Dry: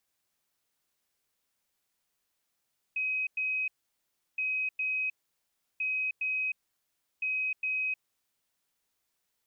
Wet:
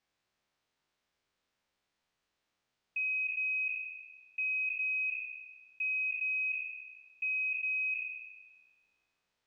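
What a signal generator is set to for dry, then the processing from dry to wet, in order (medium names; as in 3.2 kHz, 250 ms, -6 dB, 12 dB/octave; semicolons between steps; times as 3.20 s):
beep pattern sine 2.53 kHz, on 0.31 s, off 0.10 s, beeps 2, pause 0.70 s, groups 4, -28 dBFS
spectral sustain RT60 1.36 s; distance through air 130 m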